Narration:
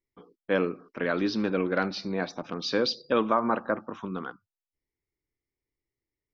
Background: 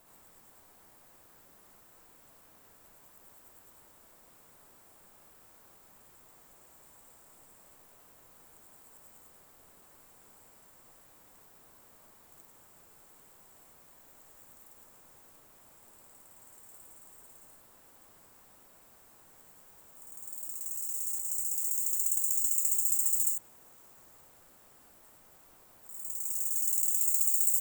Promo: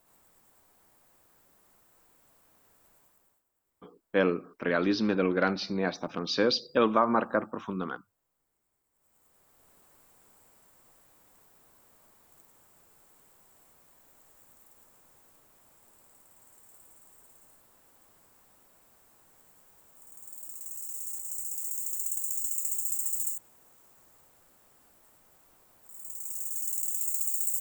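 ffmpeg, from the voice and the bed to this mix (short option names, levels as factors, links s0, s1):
-filter_complex "[0:a]adelay=3650,volume=1.06[s0];[1:a]volume=5.62,afade=t=out:st=2.96:d=0.48:silence=0.125893,afade=t=in:st=8.93:d=0.81:silence=0.1[s1];[s0][s1]amix=inputs=2:normalize=0"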